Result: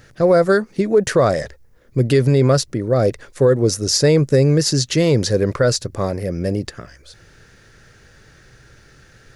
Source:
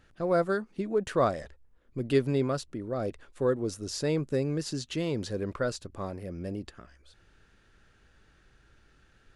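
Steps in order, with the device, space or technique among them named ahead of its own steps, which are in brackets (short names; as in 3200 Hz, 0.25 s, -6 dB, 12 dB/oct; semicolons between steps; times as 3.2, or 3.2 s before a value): graphic EQ 125/500/2000/8000 Hz +11/+8/+11/-8 dB; over-bright horn tweeter (resonant high shelf 4000 Hz +13.5 dB, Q 1.5; limiter -14 dBFS, peak gain reduction 7.5 dB); gain +8.5 dB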